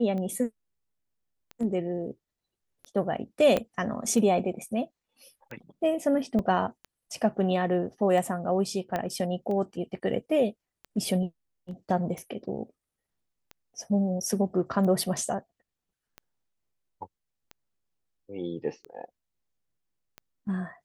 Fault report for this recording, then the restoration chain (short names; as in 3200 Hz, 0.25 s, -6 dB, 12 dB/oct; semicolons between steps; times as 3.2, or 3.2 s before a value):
tick 45 rpm -26 dBFS
3.57 pop -13 dBFS
6.39 gap 2.2 ms
8.96 pop -16 dBFS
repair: de-click; interpolate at 6.39, 2.2 ms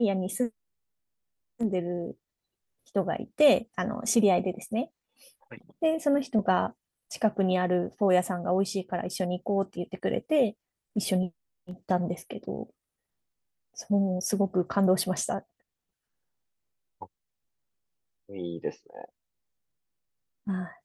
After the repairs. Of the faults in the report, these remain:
3.57 pop
8.96 pop